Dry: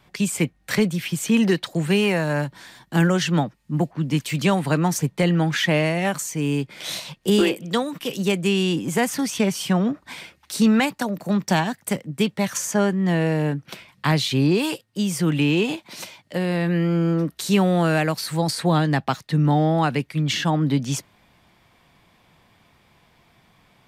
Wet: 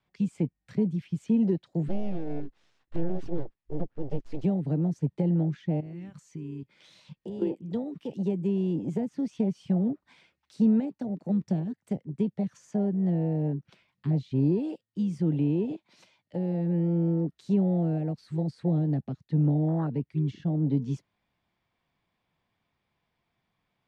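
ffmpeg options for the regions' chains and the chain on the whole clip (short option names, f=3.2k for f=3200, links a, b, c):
-filter_complex "[0:a]asettb=1/sr,asplit=3[a][b][c];[a]atrim=end=1.884[d];[b]atrim=start=1.88:end=4.44,asetpts=PTS-STARTPTS,afade=t=in:d=0.004:c=qsin,afade=t=out:st=2.556:d=0.004:c=qsin,highshelf=f=6k:g=-7.5,aeval=exprs='abs(val(0))':c=same,acrusher=bits=7:mode=log:mix=0:aa=0.000001[e];[c]atrim=start=4.436[f];[d][e]acrossfade=d=0.004:c1=hsin:c2=qsin[g];[g][f]acrossfade=d=0.004:c1=qsin:c2=hsin,asettb=1/sr,asplit=3[h][i][j];[h]atrim=end=5.804[k];[i]atrim=start=5.8:end=7.42,asetpts=PTS-STARTPTS,afade=t=in:d=0.004:c=qsin,afade=t=out:st=1.616:d=0.004:c=qsin,bandreject=f=690:w=6.4,acompressor=threshold=-28dB:ratio=8:attack=3.2:release=140:knee=1:detection=peak[l];[j]atrim=start=7.416[m];[k][l]acrossfade=d=0.004:c1=hsin:c2=qsin[n];[n][m]acrossfade=d=0.004:c1=qsin:c2=hsin,lowpass=5.6k,acrossover=split=390[o][p];[p]acompressor=threshold=-32dB:ratio=6[q];[o][q]amix=inputs=2:normalize=0,afwtdn=0.0631,volume=-4.5dB"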